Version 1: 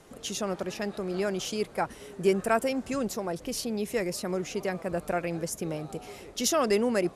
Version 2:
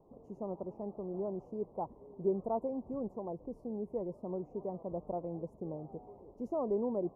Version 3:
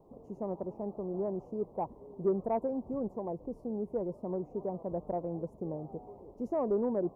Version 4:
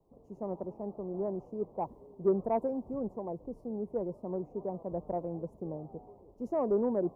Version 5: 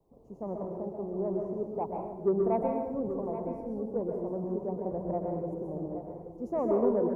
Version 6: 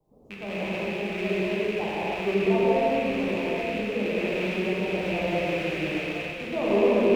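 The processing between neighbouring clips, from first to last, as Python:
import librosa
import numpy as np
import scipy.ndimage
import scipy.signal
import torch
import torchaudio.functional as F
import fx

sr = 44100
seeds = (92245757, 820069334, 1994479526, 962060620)

y1 = scipy.signal.sosfilt(scipy.signal.ellip(4, 1.0, 40, 990.0, 'lowpass', fs=sr, output='sos'), x)
y1 = y1 * 10.0 ** (-7.5 / 20.0)
y2 = 10.0 ** (-22.0 / 20.0) * np.tanh(y1 / 10.0 ** (-22.0 / 20.0))
y2 = y2 * 10.0 ** (3.5 / 20.0)
y3 = fx.band_widen(y2, sr, depth_pct=40)
y4 = y3 + 10.0 ** (-11.0 / 20.0) * np.pad(y3, (int(826 * sr / 1000.0), 0))[:len(y3)]
y4 = fx.rev_plate(y4, sr, seeds[0], rt60_s=0.76, hf_ratio=1.0, predelay_ms=110, drr_db=0.0)
y5 = fx.rattle_buzz(y4, sr, strikes_db=-47.0, level_db=-26.0)
y5 = fx.rev_gated(y5, sr, seeds[1], gate_ms=340, shape='flat', drr_db=-7.0)
y5 = y5 * 10.0 ** (-2.0 / 20.0)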